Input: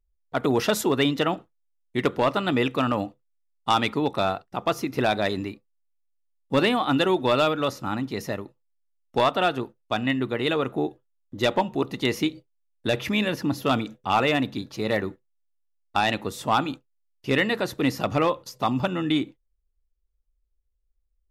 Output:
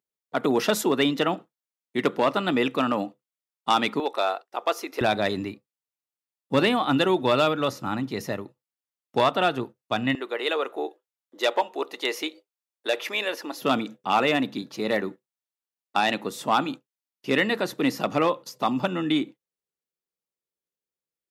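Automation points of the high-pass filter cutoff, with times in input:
high-pass filter 24 dB per octave
160 Hz
from 0:04.00 390 Hz
from 0:05.01 100 Hz
from 0:10.15 400 Hz
from 0:13.62 160 Hz

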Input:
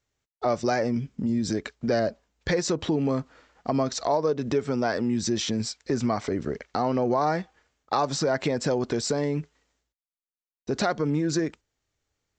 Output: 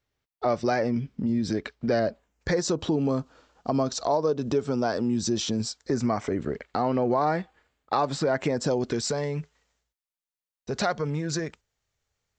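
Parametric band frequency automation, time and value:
parametric band −10 dB 0.52 octaves
0:02.07 7,000 Hz
0:02.71 2,000 Hz
0:05.66 2,000 Hz
0:06.49 5,900 Hz
0:08.32 5,900 Hz
0:08.79 1,400 Hz
0:09.13 300 Hz

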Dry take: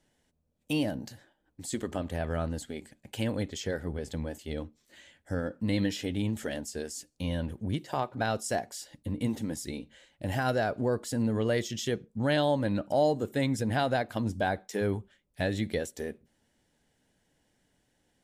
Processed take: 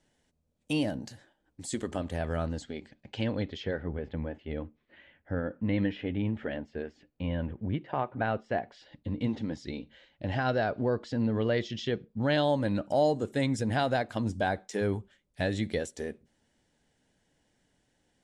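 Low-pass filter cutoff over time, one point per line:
low-pass filter 24 dB per octave
0:02.35 10,000 Hz
0:02.79 5,000 Hz
0:03.38 5,000 Hz
0:03.93 2,700 Hz
0:08.50 2,700 Hz
0:09.11 4,600 Hz
0:12.12 4,600 Hz
0:12.57 9,400 Hz

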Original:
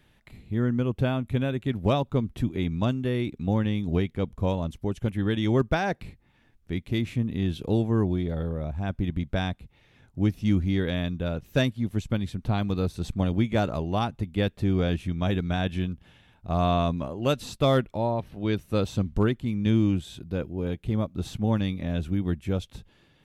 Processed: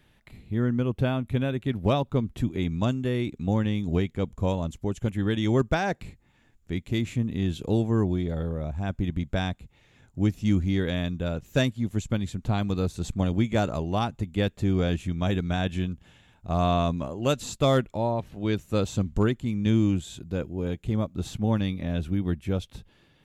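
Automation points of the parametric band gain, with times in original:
parametric band 7,100 Hz 0.25 octaves
0:02.02 +0.5 dB
0:02.77 +12 dB
0:20.84 +12 dB
0:21.71 0 dB

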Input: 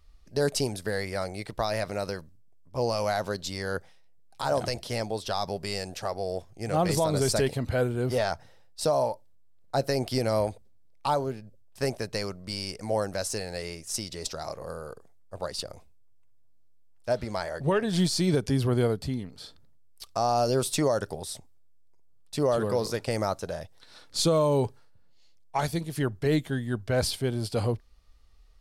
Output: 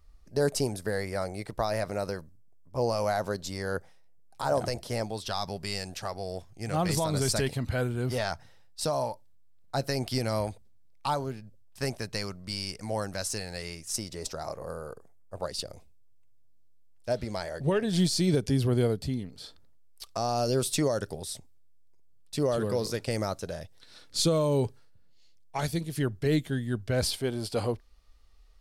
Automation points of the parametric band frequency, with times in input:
parametric band −6 dB 1.4 octaves
3,300 Hz
from 0:05.06 510 Hz
from 0:13.96 3,600 Hz
from 0:15.46 1,100 Hz
from 0:19.44 140 Hz
from 0:20.17 900 Hz
from 0:27.03 120 Hz

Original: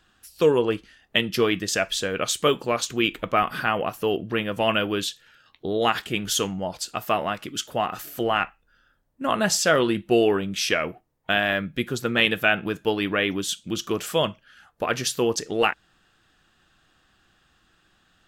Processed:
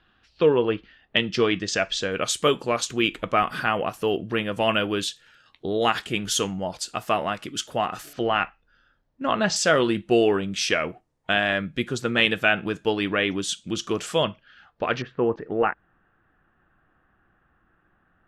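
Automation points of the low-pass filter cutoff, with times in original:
low-pass filter 24 dB per octave
3,800 Hz
from 0:01.17 6,500 Hz
from 0:02.12 11,000 Hz
from 0:08.13 5,500 Hz
from 0:09.56 9,400 Hz
from 0:14.23 4,600 Hz
from 0:15.02 1,800 Hz

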